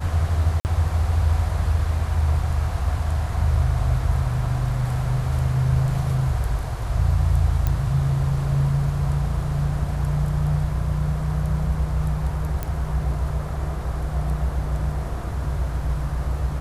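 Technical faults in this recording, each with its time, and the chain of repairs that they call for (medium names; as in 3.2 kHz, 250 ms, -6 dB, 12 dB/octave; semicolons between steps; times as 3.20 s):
0.60–0.65 s: dropout 49 ms
7.67 s: pop -10 dBFS
12.63 s: pop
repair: de-click; interpolate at 0.60 s, 49 ms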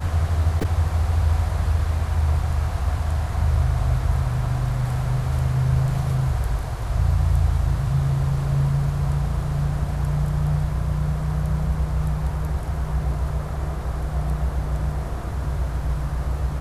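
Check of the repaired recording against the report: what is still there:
nothing left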